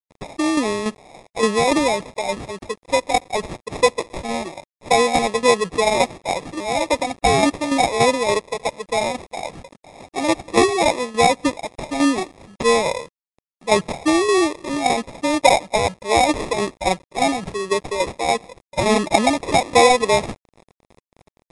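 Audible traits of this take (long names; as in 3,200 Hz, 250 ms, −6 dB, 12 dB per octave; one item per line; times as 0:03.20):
a quantiser's noise floor 8 bits, dither none
tremolo saw down 3.5 Hz, depth 55%
aliases and images of a low sample rate 1,500 Hz, jitter 0%
MP3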